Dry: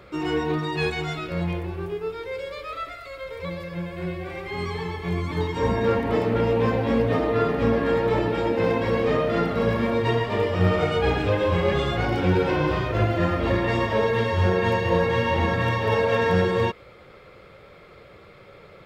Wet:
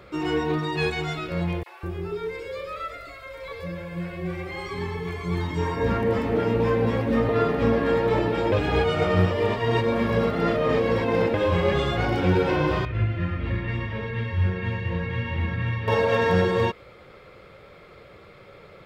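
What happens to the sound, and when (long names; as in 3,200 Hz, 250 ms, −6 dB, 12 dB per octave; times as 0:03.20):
0:01.63–0:07.29: three-band delay without the direct sound highs, mids, lows 30/200 ms, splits 700/3,600 Hz
0:08.52–0:11.34: reverse
0:12.85–0:15.88: drawn EQ curve 130 Hz 0 dB, 190 Hz −4 dB, 680 Hz −17 dB, 2,300 Hz −3 dB, 6,300 Hz −19 dB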